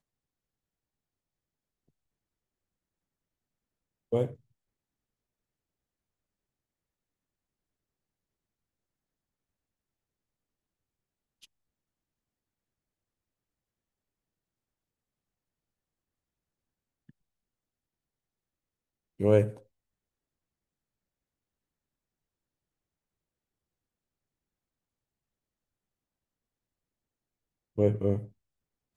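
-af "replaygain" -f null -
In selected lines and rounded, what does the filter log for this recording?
track_gain = +49.0 dB
track_peak = 0.242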